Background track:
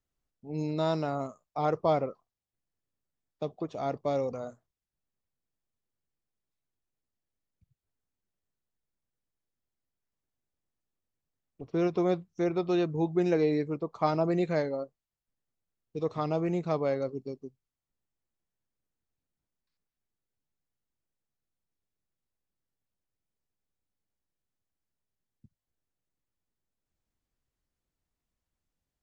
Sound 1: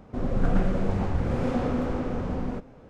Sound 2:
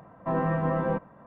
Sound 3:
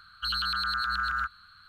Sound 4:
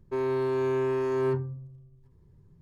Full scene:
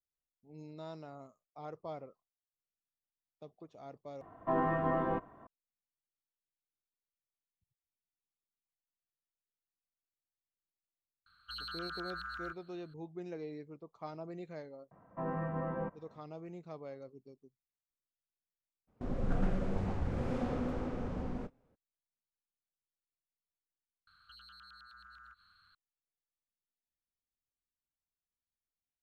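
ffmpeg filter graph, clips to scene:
ffmpeg -i bed.wav -i cue0.wav -i cue1.wav -i cue2.wav -filter_complex "[2:a]asplit=2[link_01][link_02];[3:a]asplit=2[link_03][link_04];[0:a]volume=-17.5dB[link_05];[link_01]aecho=1:1:2.8:0.59[link_06];[link_02]lowpass=2500[link_07];[1:a]agate=range=-14dB:threshold=-40dB:ratio=16:release=100:detection=peak[link_08];[link_04]acompressor=threshold=-42dB:ratio=6:attack=3.2:release=140:knee=1:detection=peak[link_09];[link_05]asplit=3[link_10][link_11][link_12];[link_10]atrim=end=4.214[link_13];[link_06]atrim=end=1.26,asetpts=PTS-STARTPTS,volume=-4.5dB[link_14];[link_11]atrim=start=5.466:end=24.074[link_15];[link_09]atrim=end=1.68,asetpts=PTS-STARTPTS,volume=-12.5dB[link_16];[link_12]atrim=start=25.746[link_17];[link_03]atrim=end=1.68,asetpts=PTS-STARTPTS,volume=-14dB,afade=type=in:duration=0.004:curve=hsin,afade=type=out:start_time=1.676:duration=0.004:curve=hsin,adelay=11260[link_18];[link_07]atrim=end=1.26,asetpts=PTS-STARTPTS,volume=-10.5dB,afade=type=in:duration=0.004:curve=hsin,afade=type=out:start_time=1.256:duration=0.004:curve=hsin,adelay=14910[link_19];[link_08]atrim=end=2.89,asetpts=PTS-STARTPTS,volume=-9dB,afade=type=in:duration=0.02,afade=type=out:start_time=2.87:duration=0.02,adelay=18870[link_20];[link_13][link_14]acrossfade=duration=0.004:curve1=hsin:curve2=hsin[link_21];[link_21][link_15]acrossfade=duration=0.004:curve1=hsin:curve2=hsin[link_22];[link_22][link_16]acrossfade=duration=0.004:curve1=hsin:curve2=hsin[link_23];[link_23][link_17]acrossfade=duration=0.004:curve1=hsin:curve2=hsin[link_24];[link_24][link_18][link_19][link_20]amix=inputs=4:normalize=0" out.wav

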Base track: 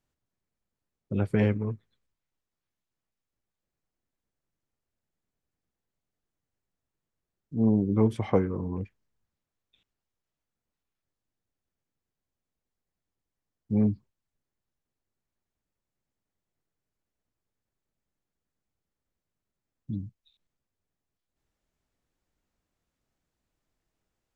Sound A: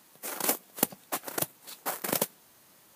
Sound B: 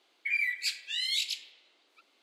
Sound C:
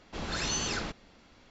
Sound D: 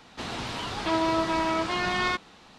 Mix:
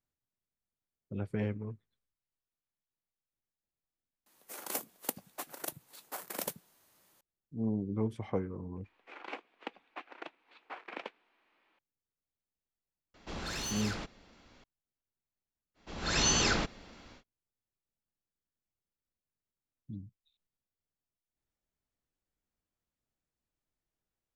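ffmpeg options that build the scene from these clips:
ffmpeg -i bed.wav -i cue0.wav -i cue1.wav -i cue2.wav -filter_complex "[1:a]asplit=2[link_01][link_02];[3:a]asplit=2[link_03][link_04];[0:a]volume=-10dB[link_05];[link_01]acrossover=split=190[link_06][link_07];[link_06]adelay=80[link_08];[link_08][link_07]amix=inputs=2:normalize=0[link_09];[link_02]highpass=frequency=300:width=0.5412,highpass=frequency=300:width=1.3066,equalizer=frequency=400:width_type=q:width=4:gain=-3,equalizer=frequency=580:width_type=q:width=4:gain=-6,equalizer=frequency=2400:width_type=q:width=4:gain=6,lowpass=frequency=3100:width=0.5412,lowpass=frequency=3100:width=1.3066[link_10];[link_03]asoftclip=type=tanh:threshold=-31.5dB[link_11];[link_04]dynaudnorm=framelen=230:gausssize=3:maxgain=14dB[link_12];[link_09]atrim=end=2.95,asetpts=PTS-STARTPTS,volume=-9dB,afade=type=in:duration=0.004:curve=hsin,afade=type=out:start_time=2.946:duration=0.004:curve=hsin,adelay=4260[link_13];[link_10]atrim=end=2.95,asetpts=PTS-STARTPTS,volume=-9dB,afade=type=in:duration=0.004:curve=hsin,afade=type=out:start_time=2.946:duration=0.004:curve=hsin,adelay=8840[link_14];[link_11]atrim=end=1.5,asetpts=PTS-STARTPTS,volume=-2dB,afade=type=in:duration=0.004:curve=hsin,afade=type=out:start_time=1.496:duration=0.004:curve=hsin,adelay=13140[link_15];[link_12]atrim=end=1.5,asetpts=PTS-STARTPTS,volume=-9dB,afade=type=in:duration=0.05,afade=type=out:start_time=1.45:duration=0.05,adelay=15740[link_16];[link_05][link_13][link_14][link_15][link_16]amix=inputs=5:normalize=0" out.wav

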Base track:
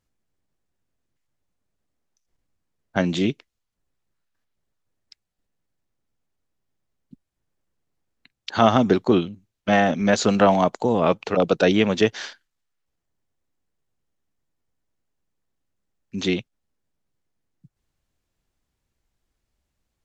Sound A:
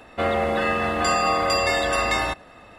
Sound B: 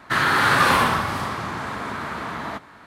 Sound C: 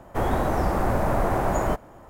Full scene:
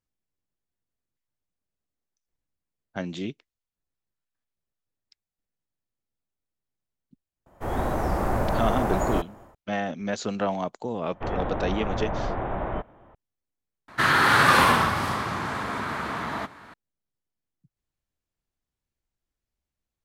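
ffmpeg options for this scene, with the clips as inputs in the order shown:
ffmpeg -i bed.wav -i cue0.wav -i cue1.wav -i cue2.wav -filter_complex "[3:a]asplit=2[link_01][link_02];[0:a]volume=-10.5dB[link_03];[link_01]dynaudnorm=framelen=150:gausssize=3:maxgain=10dB[link_04];[link_02]aresample=8000,aresample=44100[link_05];[link_03]asplit=2[link_06][link_07];[link_06]atrim=end=13.884[link_08];[2:a]atrim=end=2.86,asetpts=PTS-STARTPTS,volume=-0.5dB[link_09];[link_07]atrim=start=16.736[link_10];[link_04]atrim=end=2.09,asetpts=PTS-STARTPTS,volume=-10dB,afade=type=in:duration=0.004:curve=hsin,afade=type=out:start_time=2.086:duration=0.004:curve=hsin,adelay=328986S[link_11];[link_05]atrim=end=2.09,asetpts=PTS-STARTPTS,volume=-6dB,afade=type=in:duration=0.004:curve=hsin,afade=type=out:start_time=2.086:duration=0.004:curve=hsin,adelay=487746S[link_12];[link_08][link_09]acrossfade=duration=0.004:curve1=hsin:curve2=hsin[link_13];[link_13][link_10]acrossfade=duration=0.004:curve1=hsin:curve2=hsin[link_14];[link_14][link_11][link_12]amix=inputs=3:normalize=0" out.wav

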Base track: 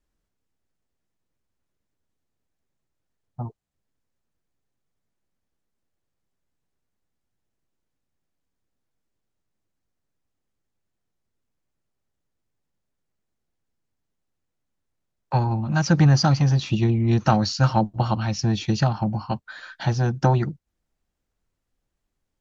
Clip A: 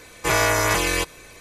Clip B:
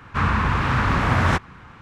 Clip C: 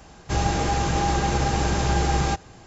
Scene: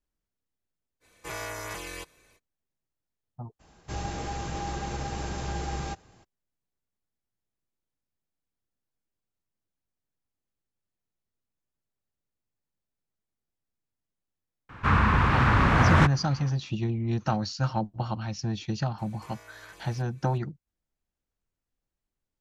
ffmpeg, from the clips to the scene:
ffmpeg -i bed.wav -i cue0.wav -i cue1.wav -i cue2.wav -filter_complex "[1:a]asplit=2[link_01][link_02];[0:a]volume=-8.5dB[link_03];[2:a]highshelf=frequency=5800:gain=-6.5[link_04];[link_02]acompressor=threshold=-40dB:ratio=3:attack=12:release=239:knee=1:detection=rms[link_05];[link_01]atrim=end=1.4,asetpts=PTS-STARTPTS,volume=-17dB,afade=type=in:duration=0.05,afade=type=out:start_time=1.35:duration=0.05,adelay=1000[link_06];[3:a]atrim=end=2.66,asetpts=PTS-STARTPTS,volume=-11dB,afade=type=in:duration=0.02,afade=type=out:start_time=2.64:duration=0.02,adelay=3590[link_07];[link_04]atrim=end=1.81,asetpts=PTS-STARTPTS,volume=-1dB,afade=type=in:duration=0.004:curve=hsin,afade=type=out:start_time=1.806:duration=0.004:curve=hsin,adelay=14690[link_08];[link_05]atrim=end=1.4,asetpts=PTS-STARTPTS,volume=-14.5dB,afade=type=in:duration=0.004:curve=hsin,afade=type=out:start_time=1.396:duration=0.004:curve=hsin,adelay=18980[link_09];[link_03][link_06][link_07][link_08][link_09]amix=inputs=5:normalize=0" out.wav

